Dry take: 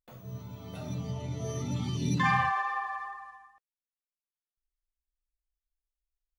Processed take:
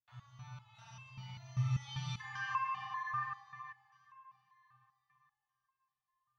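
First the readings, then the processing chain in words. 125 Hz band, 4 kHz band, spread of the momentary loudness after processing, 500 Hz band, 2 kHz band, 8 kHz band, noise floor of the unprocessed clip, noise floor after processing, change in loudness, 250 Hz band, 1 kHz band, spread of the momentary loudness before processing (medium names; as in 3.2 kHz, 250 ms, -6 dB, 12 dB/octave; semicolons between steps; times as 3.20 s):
-6.0 dB, -5.5 dB, 18 LU, under -25 dB, -9.5 dB, -12.0 dB, under -85 dBFS, under -85 dBFS, -8.5 dB, -16.0 dB, -8.5 dB, 18 LU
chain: elliptic band-stop 120–920 Hz, stop band 60 dB; distance through air 150 m; Schroeder reverb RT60 1.6 s, combs from 31 ms, DRR -4 dB; compression 2.5:1, threshold -28 dBFS, peak gain reduction 6.5 dB; high-pass 87 Hz; echo that smears into a reverb 495 ms, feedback 43%, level -14 dB; resonator arpeggio 5.1 Hz 120–530 Hz; trim +8 dB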